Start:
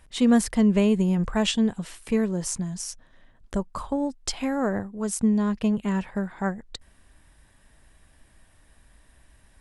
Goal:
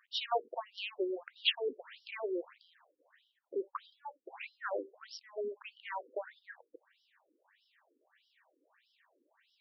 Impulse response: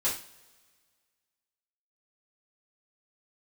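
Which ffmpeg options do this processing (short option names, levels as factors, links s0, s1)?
-filter_complex "[0:a]asplit=2[s0][s1];[1:a]atrim=start_sample=2205,atrim=end_sample=3969[s2];[s1][s2]afir=irnorm=-1:irlink=0,volume=0.0501[s3];[s0][s3]amix=inputs=2:normalize=0,aeval=exprs='0.376*(cos(1*acos(clip(val(0)/0.376,-1,1)))-cos(1*PI/2))+0.0376*(cos(3*acos(clip(val(0)/0.376,-1,1)))-cos(3*PI/2))+0.0168*(cos(5*acos(clip(val(0)/0.376,-1,1)))-cos(5*PI/2))+0.00531*(cos(7*acos(clip(val(0)/0.376,-1,1)))-cos(7*PI/2))':c=same,afftfilt=real='re*between(b*sr/1024,360*pow(4100/360,0.5+0.5*sin(2*PI*1.6*pts/sr))/1.41,360*pow(4100/360,0.5+0.5*sin(2*PI*1.6*pts/sr))*1.41)':imag='im*between(b*sr/1024,360*pow(4100/360,0.5+0.5*sin(2*PI*1.6*pts/sr))/1.41,360*pow(4100/360,0.5+0.5*sin(2*PI*1.6*pts/sr))*1.41)':win_size=1024:overlap=0.75"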